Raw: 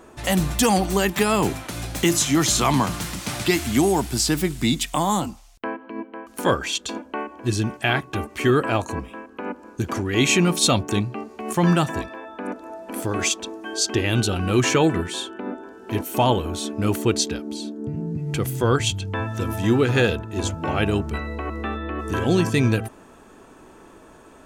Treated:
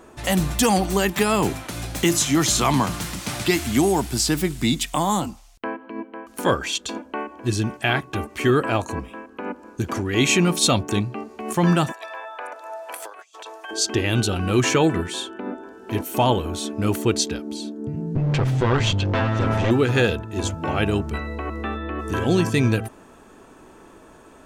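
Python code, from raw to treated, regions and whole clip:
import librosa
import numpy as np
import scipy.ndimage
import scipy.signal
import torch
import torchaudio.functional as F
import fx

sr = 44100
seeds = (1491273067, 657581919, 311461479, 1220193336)

y = fx.chain(x, sr, fx.highpass(hz=600.0, slope=24),
    fx.over_compress(threshold_db=-36.0, ratio=-0.5), at=(11.92, 13.71))
y = fx.chain(y, sr, fx.lower_of_two(delay_ms=7.7),
    fx.air_absorb(metres=140.0),
    fx.env_flatten(amount_pct=70), at=(18.15, 19.71))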